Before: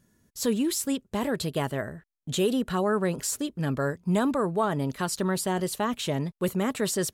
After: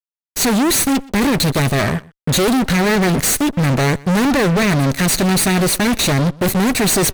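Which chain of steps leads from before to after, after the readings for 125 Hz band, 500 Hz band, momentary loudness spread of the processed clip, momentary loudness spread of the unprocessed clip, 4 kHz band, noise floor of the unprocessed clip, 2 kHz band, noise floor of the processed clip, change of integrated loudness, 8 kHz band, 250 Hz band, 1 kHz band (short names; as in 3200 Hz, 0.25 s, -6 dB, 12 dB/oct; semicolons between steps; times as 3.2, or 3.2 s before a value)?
+14.5 dB, +8.5 dB, 3 LU, 5 LU, +15.0 dB, -75 dBFS, +16.0 dB, under -85 dBFS, +12.5 dB, +14.5 dB, +12.0 dB, +10.5 dB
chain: minimum comb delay 0.48 ms; fuzz box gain 40 dB, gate -46 dBFS; outdoor echo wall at 21 m, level -23 dB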